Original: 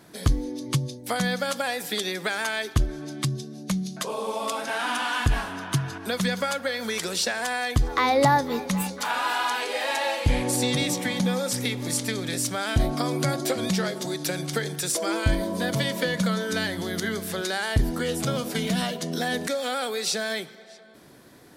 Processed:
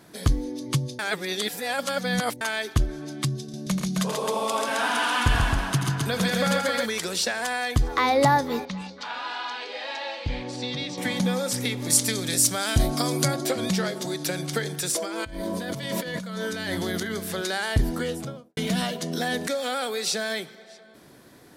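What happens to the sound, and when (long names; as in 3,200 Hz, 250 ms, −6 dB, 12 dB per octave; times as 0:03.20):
0:00.99–0:02.41: reverse
0:03.40–0:06.86: multi-tap delay 83/114/136/265 ms −8.5/−14/−3.5/−3.5 dB
0:08.65–0:10.98: transistor ladder low-pass 5,500 Hz, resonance 35%
0:11.90–0:13.28: bass and treble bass +1 dB, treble +9 dB
0:14.98–0:17.15: compressor whose output falls as the input rises −31 dBFS
0:17.92–0:18.57: fade out and dull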